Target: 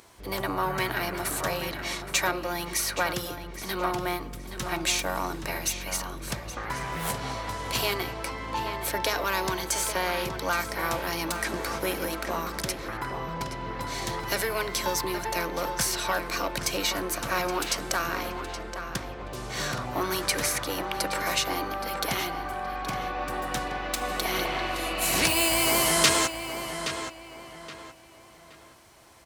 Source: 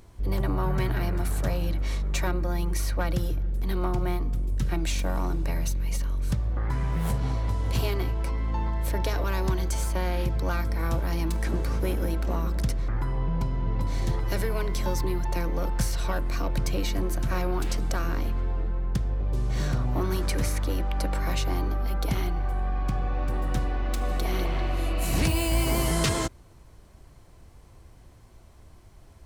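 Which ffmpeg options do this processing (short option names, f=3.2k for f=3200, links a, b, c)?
-filter_complex "[0:a]highpass=f=1k:p=1,asplit=2[a][b];[b]adelay=822,lowpass=f=3.9k:p=1,volume=-8.5dB,asplit=2[c][d];[d]adelay=822,lowpass=f=3.9k:p=1,volume=0.34,asplit=2[e][f];[f]adelay=822,lowpass=f=3.9k:p=1,volume=0.34,asplit=2[g][h];[h]adelay=822,lowpass=f=3.9k:p=1,volume=0.34[i];[c][e][g][i]amix=inputs=4:normalize=0[j];[a][j]amix=inputs=2:normalize=0,volume=8.5dB"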